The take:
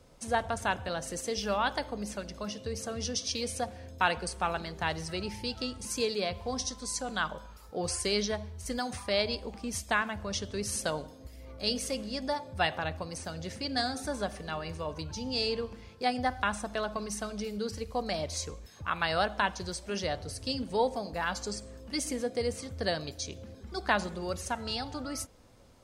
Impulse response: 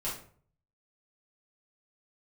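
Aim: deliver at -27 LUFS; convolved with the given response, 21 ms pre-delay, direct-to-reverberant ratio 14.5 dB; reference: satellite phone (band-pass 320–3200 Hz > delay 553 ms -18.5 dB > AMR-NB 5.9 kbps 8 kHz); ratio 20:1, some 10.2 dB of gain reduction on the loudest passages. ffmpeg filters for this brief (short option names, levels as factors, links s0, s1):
-filter_complex "[0:a]acompressor=threshold=0.0251:ratio=20,asplit=2[s0][s1];[1:a]atrim=start_sample=2205,adelay=21[s2];[s1][s2]afir=irnorm=-1:irlink=0,volume=0.119[s3];[s0][s3]amix=inputs=2:normalize=0,highpass=320,lowpass=3200,aecho=1:1:553:0.119,volume=5.96" -ar 8000 -c:a libopencore_amrnb -b:a 5900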